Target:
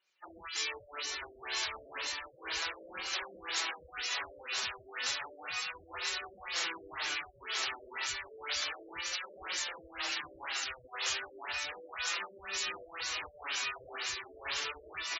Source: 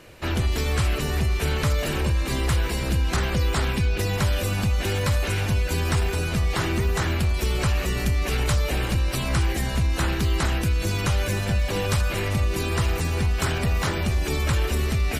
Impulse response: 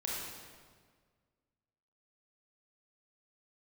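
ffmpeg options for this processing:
-filter_complex "[0:a]aderivative,asplit=2[link_01][link_02];[link_02]adelay=25,volume=-4dB[link_03];[link_01][link_03]amix=inputs=2:normalize=0,aecho=1:1:989:0.668,asplit=2[link_04][link_05];[1:a]atrim=start_sample=2205,lowpass=5400[link_06];[link_05][link_06]afir=irnorm=-1:irlink=0,volume=-17dB[link_07];[link_04][link_07]amix=inputs=2:normalize=0,asplit=3[link_08][link_09][link_10];[link_09]asetrate=22050,aresample=44100,atempo=2,volume=-8dB[link_11];[link_10]asetrate=33038,aresample=44100,atempo=1.33484,volume=-8dB[link_12];[link_08][link_11][link_12]amix=inputs=3:normalize=0,flanger=delay=5.2:depth=2.8:regen=42:speed=0.32:shape=triangular,asplit=2[link_13][link_14];[link_14]alimiter=level_in=6dB:limit=-24dB:level=0:latency=1:release=14,volume=-6dB,volume=1dB[link_15];[link_13][link_15]amix=inputs=2:normalize=0,equalizer=frequency=160:width_type=o:width=1.4:gain=-10,afftdn=noise_reduction=24:noise_floor=-44,afftfilt=real='re*lt(b*sr/1024,630*pow(7700/630,0.5+0.5*sin(2*PI*2*pts/sr)))':imag='im*lt(b*sr/1024,630*pow(7700/630,0.5+0.5*sin(2*PI*2*pts/sr)))':win_size=1024:overlap=0.75"

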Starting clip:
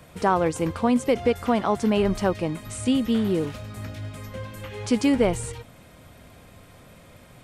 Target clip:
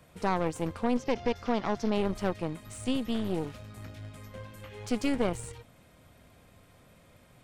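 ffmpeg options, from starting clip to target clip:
ffmpeg -i in.wav -filter_complex "[0:a]asettb=1/sr,asplit=3[link_01][link_02][link_03];[link_01]atrim=end=0.964[link_04];[link_02]atrim=start=0.96:end=1.94,asetpts=PTS-STARTPTS,afade=type=in:duration=0.004:curve=qsin,afade=type=out:start_time=0.976:duration=0.004:curve=qsin,highshelf=frequency=7100:width_type=q:width=3:gain=-9[link_05];[link_03]atrim=start=1.936[link_06];[link_04][link_05]acrossfade=duration=0.004:curve1=hsin:curve2=qsin[link_07];[link_07][link_06]acrossfade=duration=0.004:curve1=qsin:curve2=hsin,aeval=exprs='0.398*(cos(1*acos(clip(val(0)/0.398,-1,1)))-cos(1*PI/2))+0.0708*(cos(4*acos(clip(val(0)/0.398,-1,1)))-cos(4*PI/2))+0.0112*(cos(8*acos(clip(val(0)/0.398,-1,1)))-cos(8*PI/2))':channel_layout=same,volume=-9dB" out.wav

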